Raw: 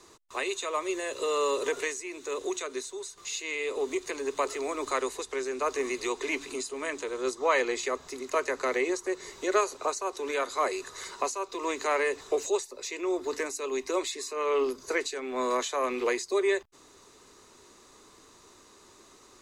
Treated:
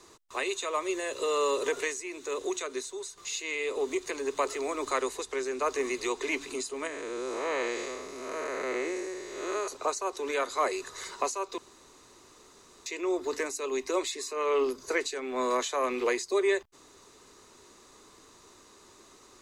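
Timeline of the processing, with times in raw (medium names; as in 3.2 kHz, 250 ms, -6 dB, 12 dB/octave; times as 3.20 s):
6.87–9.68 s: spectral blur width 251 ms
11.58–12.86 s: room tone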